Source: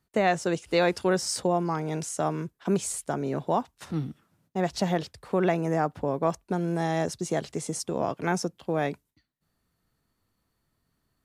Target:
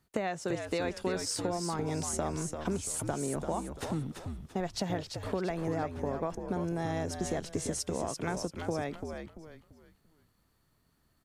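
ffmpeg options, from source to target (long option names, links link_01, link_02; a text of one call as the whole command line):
ffmpeg -i in.wav -filter_complex "[0:a]acompressor=threshold=-33dB:ratio=6,asplit=5[link_01][link_02][link_03][link_04][link_05];[link_02]adelay=340,afreqshift=-79,volume=-6dB[link_06];[link_03]adelay=680,afreqshift=-158,volume=-15.4dB[link_07];[link_04]adelay=1020,afreqshift=-237,volume=-24.7dB[link_08];[link_05]adelay=1360,afreqshift=-316,volume=-34.1dB[link_09];[link_01][link_06][link_07][link_08][link_09]amix=inputs=5:normalize=0,volume=2.5dB" out.wav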